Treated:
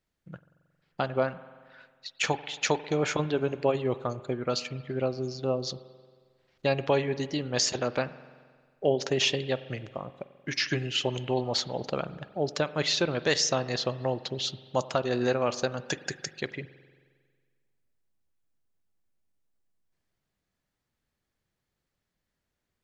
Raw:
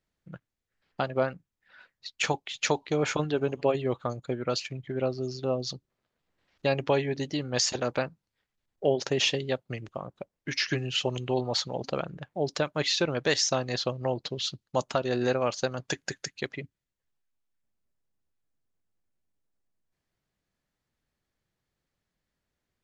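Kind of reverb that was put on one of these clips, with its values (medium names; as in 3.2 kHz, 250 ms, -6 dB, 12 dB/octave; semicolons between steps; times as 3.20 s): spring tank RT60 1.7 s, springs 45 ms, chirp 70 ms, DRR 14.5 dB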